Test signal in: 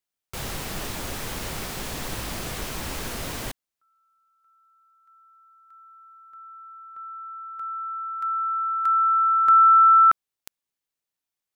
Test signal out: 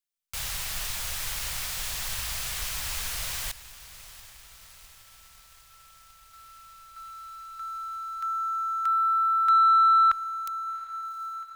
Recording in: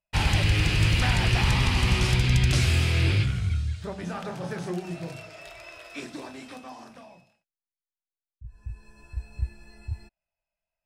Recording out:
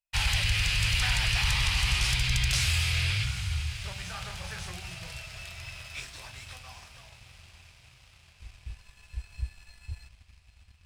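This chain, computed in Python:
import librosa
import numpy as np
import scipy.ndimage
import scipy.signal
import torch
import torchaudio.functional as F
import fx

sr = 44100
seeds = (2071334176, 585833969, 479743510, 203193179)

y = fx.tone_stack(x, sr, knobs='10-0-10')
y = fx.echo_diffused(y, sr, ms=755, feedback_pct=72, wet_db=-15.0)
y = fx.leveller(y, sr, passes=1)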